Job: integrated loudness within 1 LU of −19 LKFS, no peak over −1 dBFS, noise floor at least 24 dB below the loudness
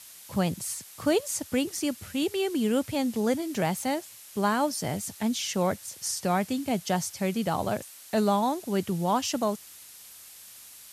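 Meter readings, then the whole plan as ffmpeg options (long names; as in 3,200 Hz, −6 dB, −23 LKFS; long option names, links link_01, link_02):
background noise floor −48 dBFS; target noise floor −53 dBFS; integrated loudness −28.5 LKFS; sample peak −13.0 dBFS; target loudness −19.0 LKFS
→ -af "afftdn=noise_reduction=6:noise_floor=-48"
-af "volume=9.5dB"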